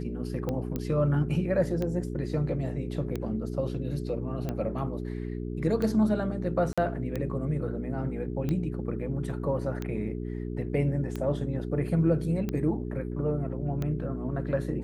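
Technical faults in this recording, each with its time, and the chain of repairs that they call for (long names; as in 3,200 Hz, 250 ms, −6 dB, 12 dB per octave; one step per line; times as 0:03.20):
mains hum 60 Hz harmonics 7 −34 dBFS
scratch tick 45 rpm −19 dBFS
0:00.76: click −18 dBFS
0:06.73–0:06.78: drop-out 46 ms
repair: click removal
hum removal 60 Hz, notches 7
repair the gap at 0:06.73, 46 ms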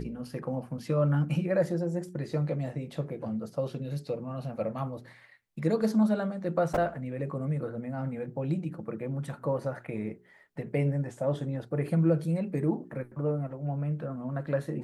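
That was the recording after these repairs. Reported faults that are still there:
none of them is left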